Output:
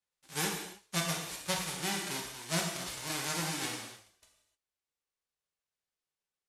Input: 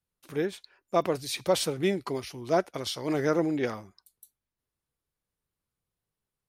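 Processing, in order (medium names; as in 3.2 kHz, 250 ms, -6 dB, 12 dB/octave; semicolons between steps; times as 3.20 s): formants flattened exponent 0.1; Bessel low-pass 8.4 kHz, order 6; gated-style reverb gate 330 ms falling, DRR -1 dB; gain riding within 4 dB 0.5 s; trim -7.5 dB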